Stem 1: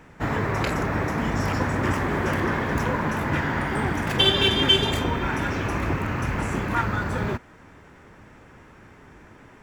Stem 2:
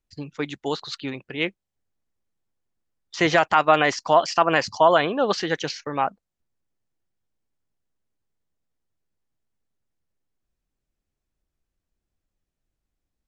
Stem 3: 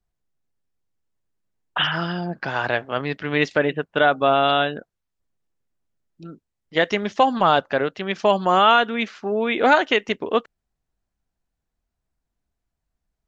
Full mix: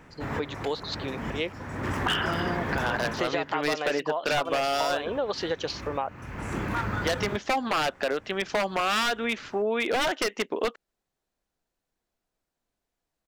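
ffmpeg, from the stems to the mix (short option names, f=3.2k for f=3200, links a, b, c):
-filter_complex "[0:a]asoftclip=type=hard:threshold=-17dB,volume=-2.5dB,asplit=3[a][b][c];[a]atrim=end=3.56,asetpts=PTS-STARTPTS,afade=t=out:st=3.556:d=0.004:c=hsin[d];[b]atrim=start=3.56:end=4.45,asetpts=PTS-STARTPTS,volume=0[e];[c]atrim=start=4.45,asetpts=PTS-STARTPTS,afade=t=in:d=0.004:c=hsin[f];[d][e][f]concat=n=3:v=0:a=1[g];[1:a]equalizer=f=500:t=o:w=1:g=10,equalizer=f=1k:t=o:w=1:g=5,equalizer=f=4k:t=o:w=1:g=8,acompressor=threshold=-12dB:ratio=6,volume=-8.5dB,asplit=2[h][i];[2:a]highpass=250,aeval=exprs='0.2*(abs(mod(val(0)/0.2+3,4)-2)-1)':c=same,adelay=300,volume=1.5dB[j];[i]apad=whole_len=424269[k];[g][k]sidechaincompress=threshold=-36dB:ratio=20:attack=5.5:release=469[l];[l][h][j]amix=inputs=3:normalize=0,acompressor=threshold=-25dB:ratio=3"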